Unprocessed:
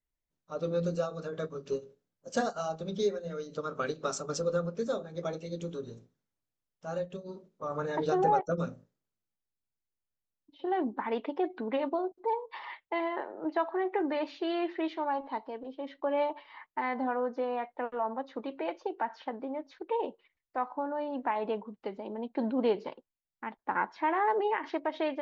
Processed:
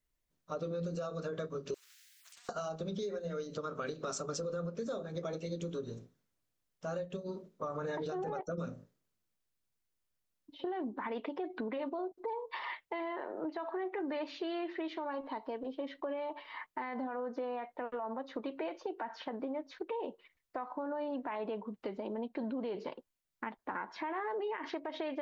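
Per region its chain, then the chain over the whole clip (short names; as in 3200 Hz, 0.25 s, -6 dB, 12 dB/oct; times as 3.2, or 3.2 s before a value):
1.74–2.49 elliptic high-pass 1800 Hz, stop band 70 dB + compressor 12:1, threshold -56 dBFS + spectral compressor 10:1
whole clip: notch 830 Hz, Q 12; limiter -28 dBFS; compressor 3:1, threshold -42 dBFS; gain +5 dB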